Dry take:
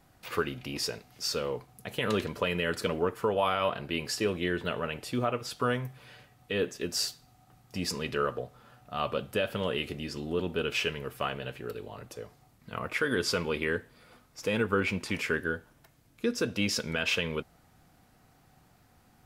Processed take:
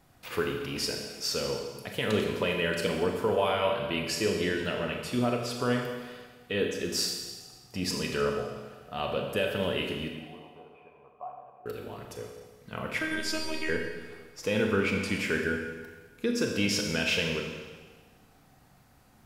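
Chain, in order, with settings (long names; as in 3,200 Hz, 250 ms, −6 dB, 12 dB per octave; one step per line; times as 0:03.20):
dynamic equaliser 1,200 Hz, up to −7 dB, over −49 dBFS, Q 4.4
0:10.08–0:11.66: formant resonators in series a
0:12.98–0:13.69: phases set to zero 315 Hz
four-comb reverb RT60 1.4 s, combs from 29 ms, DRR 2 dB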